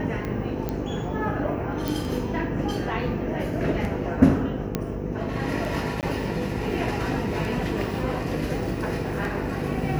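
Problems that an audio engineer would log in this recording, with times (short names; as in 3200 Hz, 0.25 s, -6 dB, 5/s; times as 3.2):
buzz 50 Hz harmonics 10 -32 dBFS
tick 33 1/3 rpm -19 dBFS
0.69 pop -15 dBFS
1.88 pop
4.75 pop -10 dBFS
6.01–6.03 gap 18 ms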